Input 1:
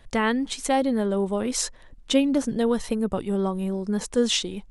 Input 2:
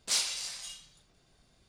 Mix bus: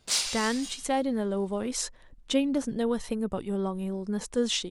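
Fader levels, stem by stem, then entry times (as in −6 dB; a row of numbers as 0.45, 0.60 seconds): −5.0, +2.0 decibels; 0.20, 0.00 seconds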